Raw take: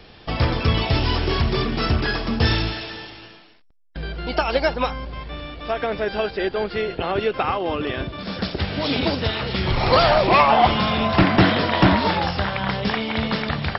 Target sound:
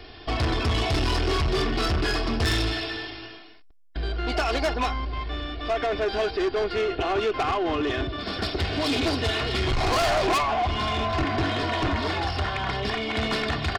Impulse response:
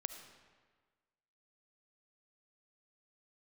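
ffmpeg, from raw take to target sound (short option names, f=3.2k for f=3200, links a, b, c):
-filter_complex "[0:a]aecho=1:1:2.8:0.7,asettb=1/sr,asplit=3[a][b][c];[a]atrim=end=10.384[d];[b]atrim=start=10.38:end=13.17,asetpts=PTS-STARTPTS,afade=t=in:d=0.004:c=qsin,afade=t=out:st=2.786:d=0.004:c=qsin,acrossover=split=120[e][f];[f]acompressor=threshold=-25dB:ratio=2[g];[e][g]amix=inputs=2:normalize=0[h];[c]atrim=start=13.166[i];[d][h]acrossfade=d=0.004:c1=hsin:c2=qsin[j];[j][i]acrossfade=d=0.004:c1=qsin:c2=hsin,asoftclip=type=tanh:threshold=-20dB"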